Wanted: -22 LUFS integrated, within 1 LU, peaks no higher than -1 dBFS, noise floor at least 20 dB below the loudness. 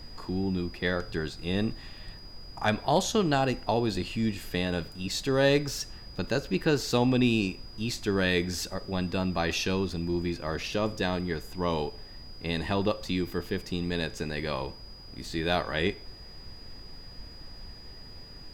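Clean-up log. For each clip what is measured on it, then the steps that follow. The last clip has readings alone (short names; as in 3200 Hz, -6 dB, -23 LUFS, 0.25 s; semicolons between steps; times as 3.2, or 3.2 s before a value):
steady tone 4900 Hz; tone level -48 dBFS; noise floor -46 dBFS; noise floor target -50 dBFS; loudness -29.5 LUFS; peak -12.0 dBFS; loudness target -22.0 LUFS
-> notch 4900 Hz, Q 30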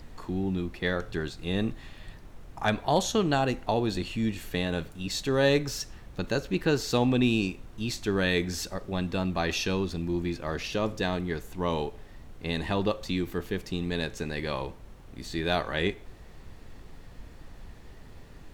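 steady tone none; noise floor -48 dBFS; noise floor target -50 dBFS
-> noise print and reduce 6 dB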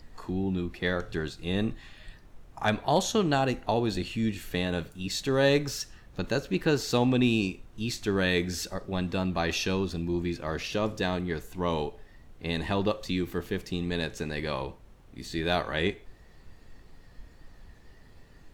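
noise floor -54 dBFS; loudness -29.5 LUFS; peak -12.0 dBFS; loudness target -22.0 LUFS
-> gain +7.5 dB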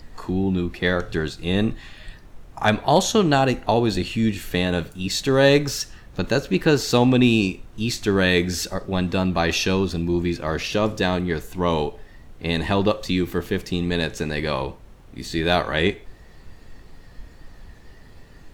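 loudness -22.0 LUFS; peak -4.5 dBFS; noise floor -46 dBFS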